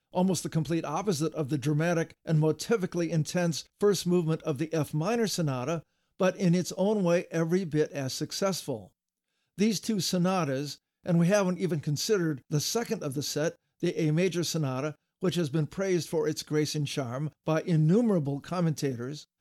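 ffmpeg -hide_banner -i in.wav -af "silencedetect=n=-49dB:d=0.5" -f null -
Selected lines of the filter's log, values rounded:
silence_start: 8.87
silence_end: 9.58 | silence_duration: 0.71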